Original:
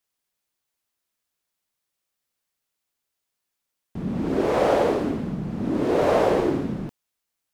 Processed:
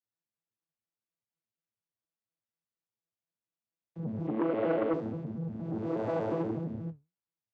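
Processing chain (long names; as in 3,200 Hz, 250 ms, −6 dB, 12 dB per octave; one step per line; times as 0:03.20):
vocoder with an arpeggio as carrier bare fifth, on A2, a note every 119 ms
0:04.27–0:04.94: loudspeaker in its box 160–3,800 Hz, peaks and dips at 300 Hz +10 dB, 550 Hz +6 dB, 840 Hz −3 dB, 1,400 Hz −8 dB, 2,100 Hz +7 dB, 3,000 Hz +6 dB
flanger 1.5 Hz, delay 5 ms, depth 9.5 ms, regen +69%
saturating transformer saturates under 670 Hz
level −4.5 dB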